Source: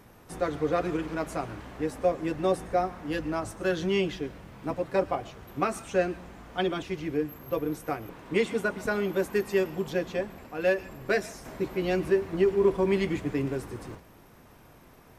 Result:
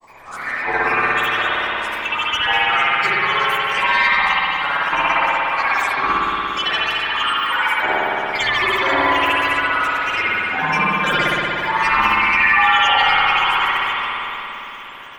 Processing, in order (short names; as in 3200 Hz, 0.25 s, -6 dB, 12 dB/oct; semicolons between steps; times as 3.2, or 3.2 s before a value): band inversion scrambler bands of 2000 Hz; limiter -20.5 dBFS, peak gain reduction 9 dB; grains, pitch spread up and down by 12 st; spring tank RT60 3.4 s, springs 57 ms, chirp 40 ms, DRR -8 dB; gain +7 dB